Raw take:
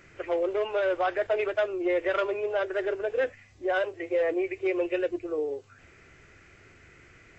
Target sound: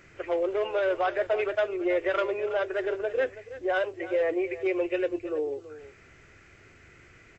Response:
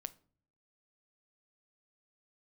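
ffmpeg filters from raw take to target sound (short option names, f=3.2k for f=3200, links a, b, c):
-af "aecho=1:1:328:0.178"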